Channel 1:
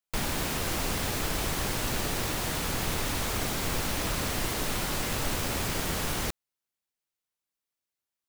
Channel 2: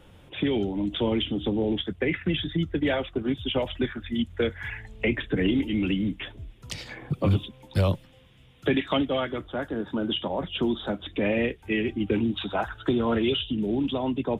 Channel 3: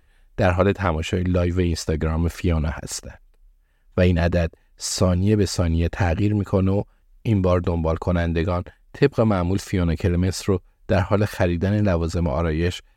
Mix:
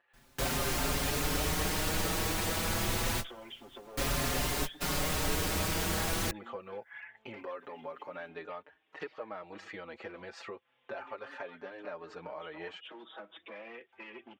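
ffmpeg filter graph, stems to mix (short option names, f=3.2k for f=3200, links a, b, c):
-filter_complex "[0:a]volume=1.5dB[a];[1:a]acompressor=threshold=-26dB:ratio=6,volume=26.5dB,asoftclip=hard,volume=-26.5dB,adelay=2300,volume=-3.5dB[b];[2:a]acontrast=37,volume=-4.5dB,asplit=2[c][d];[d]apad=whole_len=365429[e];[a][e]sidechaingate=range=-31dB:threshold=-43dB:ratio=16:detection=peak[f];[b][c]amix=inputs=2:normalize=0,highpass=670,lowpass=2.3k,acompressor=threshold=-40dB:ratio=3,volume=0dB[g];[f][g]amix=inputs=2:normalize=0,asplit=2[h][i];[i]adelay=5.4,afreqshift=0.28[j];[h][j]amix=inputs=2:normalize=1"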